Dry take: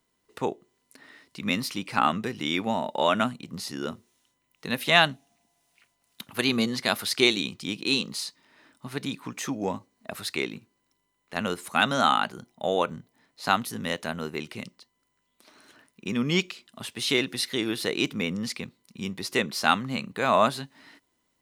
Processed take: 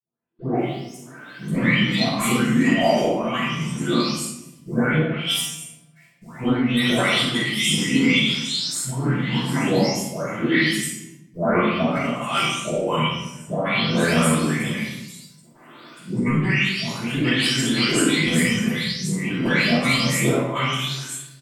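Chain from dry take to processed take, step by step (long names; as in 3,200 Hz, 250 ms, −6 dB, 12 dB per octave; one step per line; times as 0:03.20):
every frequency bin delayed by itself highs late, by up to 566 ms
high-pass filter 96 Hz 24 dB per octave
hum removal 195.9 Hz, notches 27
noise gate with hold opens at −53 dBFS
high-shelf EQ 9,800 Hz +4.5 dB
compressor whose output falls as the input rises −30 dBFS, ratio −0.5
formants moved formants −3 semitones
double-tracking delay 46 ms −12 dB
rectangular room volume 300 cubic metres, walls mixed, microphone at 5.4 metres
level −3 dB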